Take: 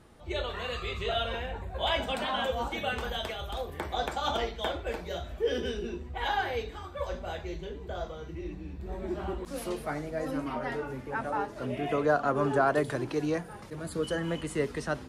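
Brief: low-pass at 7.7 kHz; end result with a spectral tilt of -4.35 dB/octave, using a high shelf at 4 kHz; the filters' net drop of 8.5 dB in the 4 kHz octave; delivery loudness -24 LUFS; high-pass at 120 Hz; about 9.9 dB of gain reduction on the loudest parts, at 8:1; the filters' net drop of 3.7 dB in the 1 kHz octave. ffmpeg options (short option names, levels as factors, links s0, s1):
-af "highpass=120,lowpass=7700,equalizer=f=1000:t=o:g=-4.5,highshelf=f=4000:g=-8,equalizer=f=4000:t=o:g=-7,acompressor=threshold=0.0224:ratio=8,volume=5.62"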